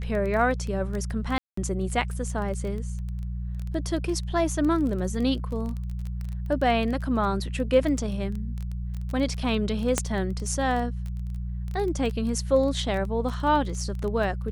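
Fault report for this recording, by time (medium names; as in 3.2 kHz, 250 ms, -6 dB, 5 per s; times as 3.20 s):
crackle 15 per s -30 dBFS
hum 60 Hz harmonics 3 -31 dBFS
1.38–1.57 s: dropout 194 ms
9.98 s: pop -8 dBFS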